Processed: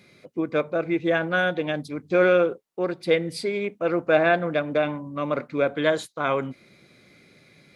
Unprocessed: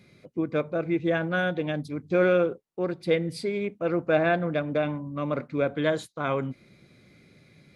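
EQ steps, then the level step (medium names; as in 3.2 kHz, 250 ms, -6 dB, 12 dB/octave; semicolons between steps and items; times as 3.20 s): bass shelf 220 Hz -11 dB; +5.0 dB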